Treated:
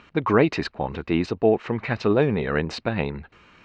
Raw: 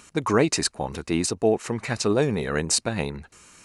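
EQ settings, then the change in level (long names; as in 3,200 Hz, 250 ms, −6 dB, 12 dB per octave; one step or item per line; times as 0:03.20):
low-pass filter 3,400 Hz 24 dB per octave
+2.0 dB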